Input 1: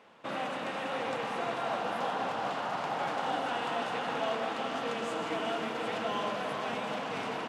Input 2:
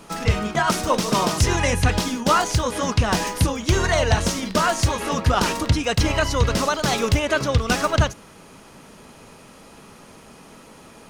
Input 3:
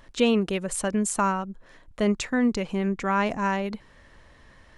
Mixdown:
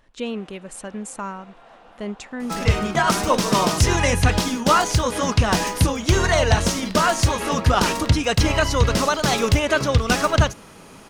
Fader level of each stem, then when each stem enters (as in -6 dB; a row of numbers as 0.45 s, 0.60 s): -15.5 dB, +1.5 dB, -7.0 dB; 0.00 s, 2.40 s, 0.00 s